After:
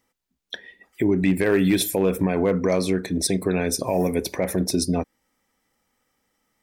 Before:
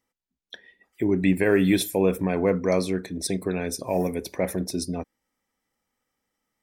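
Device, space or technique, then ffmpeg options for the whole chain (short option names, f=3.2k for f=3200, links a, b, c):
clipper into limiter: -af "asoftclip=type=hard:threshold=-11.5dB,alimiter=limit=-19dB:level=0:latency=1:release=176,volume=8dB"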